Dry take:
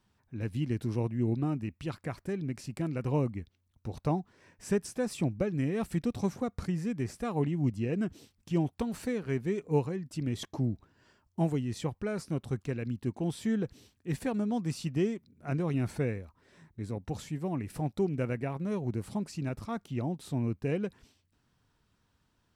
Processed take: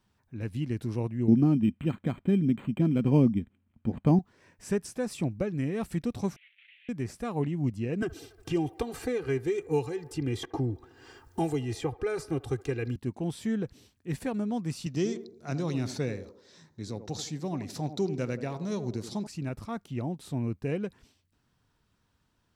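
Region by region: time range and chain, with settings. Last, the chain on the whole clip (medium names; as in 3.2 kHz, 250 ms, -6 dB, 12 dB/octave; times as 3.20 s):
1.28–4.19 s: small resonant body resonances 220/2400 Hz, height 15 dB, ringing for 30 ms + decimation joined by straight lines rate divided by 8×
6.36–6.89 s: one-bit delta coder 16 kbps, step -44.5 dBFS + steep high-pass 2.1 kHz 48 dB/octave
8.02–12.96 s: comb 2.5 ms, depth 91% + feedback echo behind a band-pass 71 ms, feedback 64%, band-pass 870 Hz, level -19 dB + three bands compressed up and down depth 70%
14.86–19.27 s: high-pass 99 Hz + high-order bell 5 kHz +13 dB 1.2 oct + band-passed feedback delay 83 ms, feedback 47%, band-pass 430 Hz, level -8.5 dB
whole clip: none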